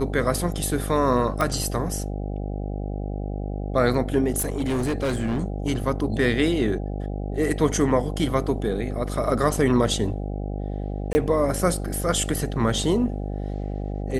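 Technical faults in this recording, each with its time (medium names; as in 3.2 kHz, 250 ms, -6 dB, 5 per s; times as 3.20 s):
buzz 50 Hz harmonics 16 -29 dBFS
1.41 s: pop -11 dBFS
4.38–5.44 s: clipped -20.5 dBFS
11.13–11.15 s: dropout 20 ms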